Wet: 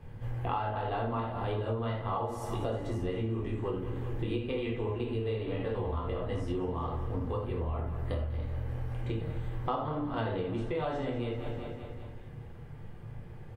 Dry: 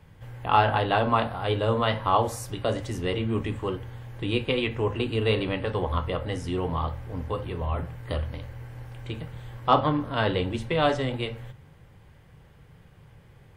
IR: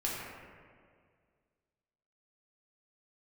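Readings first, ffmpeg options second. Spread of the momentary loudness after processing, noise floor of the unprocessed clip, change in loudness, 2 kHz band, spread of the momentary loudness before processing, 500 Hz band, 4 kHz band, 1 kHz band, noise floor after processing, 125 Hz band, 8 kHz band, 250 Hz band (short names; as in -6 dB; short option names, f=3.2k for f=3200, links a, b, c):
12 LU, -53 dBFS, -7.5 dB, -12.5 dB, 14 LU, -6.5 dB, -14.5 dB, -10.0 dB, -45 dBFS, -4.0 dB, under -10 dB, -5.5 dB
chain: -filter_complex "[0:a]tiltshelf=f=1.3k:g=5,aecho=1:1:194|388|582|776|970|1164:0.188|0.109|0.0634|0.0368|0.0213|0.0124[a];[1:a]atrim=start_sample=2205,atrim=end_sample=4410[b];[a][b]afir=irnorm=-1:irlink=0,acompressor=threshold=-28dB:ratio=12,volume=-1.5dB"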